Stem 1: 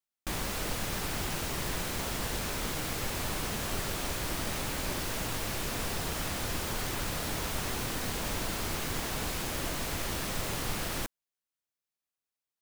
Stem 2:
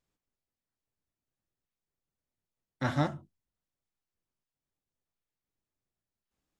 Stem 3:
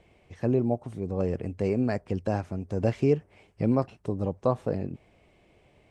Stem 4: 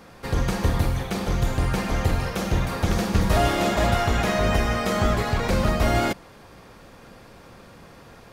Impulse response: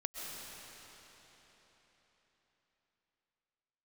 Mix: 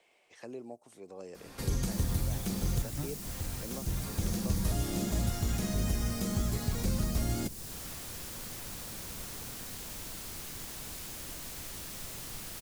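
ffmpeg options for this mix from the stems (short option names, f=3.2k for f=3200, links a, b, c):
-filter_complex "[0:a]adelay=1650,volume=-11dB[a];[1:a]volume=-9dB,asplit=2[b][c];[2:a]highpass=540,volume=-5dB[d];[3:a]adelay=1350,volume=-4dB[e];[c]apad=whole_len=426479[f];[e][f]sidechaincompress=threshold=-46dB:ratio=8:attack=8:release=1360[g];[a][b][d][g]amix=inputs=4:normalize=0,highshelf=f=3.3k:g=9.5,acrossover=split=320|5000[h][i][j];[h]acompressor=threshold=-27dB:ratio=4[k];[i]acompressor=threshold=-48dB:ratio=4[l];[j]acompressor=threshold=-41dB:ratio=4[m];[k][l][m]amix=inputs=3:normalize=0"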